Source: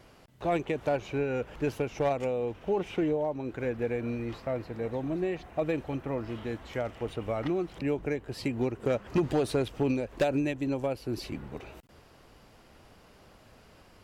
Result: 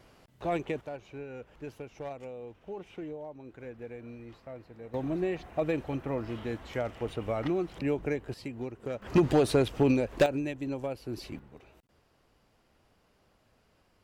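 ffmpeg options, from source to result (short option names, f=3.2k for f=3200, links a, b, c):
-af "asetnsamples=n=441:p=0,asendcmd='0.81 volume volume -12dB;4.94 volume volume 0dB;8.34 volume volume -8dB;9.02 volume volume 3.5dB;10.26 volume volume -4dB;11.39 volume volume -11.5dB',volume=-2.5dB"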